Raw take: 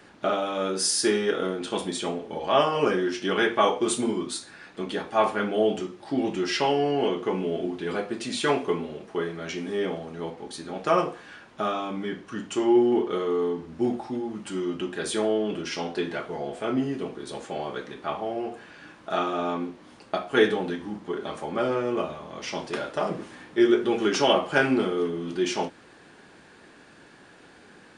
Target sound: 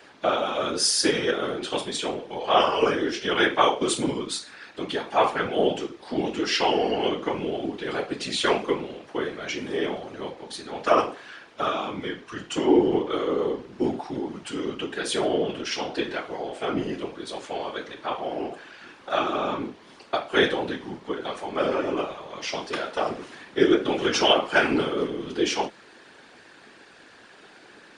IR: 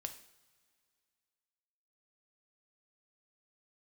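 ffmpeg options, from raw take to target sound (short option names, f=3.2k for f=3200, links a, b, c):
-filter_complex "[0:a]acrossover=split=230 5200:gain=0.224 1 0.178[a][b][c];[a][b][c]amix=inputs=3:normalize=0,crystalizer=i=2.5:c=0,afftfilt=real='hypot(re,im)*cos(2*PI*random(0))':imag='hypot(re,im)*sin(2*PI*random(1))':win_size=512:overlap=0.75,volume=7dB"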